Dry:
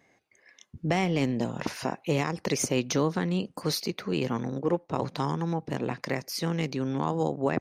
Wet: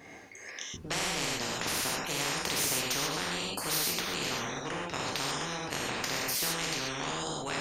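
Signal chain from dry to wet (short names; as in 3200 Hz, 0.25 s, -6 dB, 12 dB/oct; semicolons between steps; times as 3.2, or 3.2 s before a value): non-linear reverb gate 0.16 s flat, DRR -4.5 dB; spectral compressor 4:1; gain -4 dB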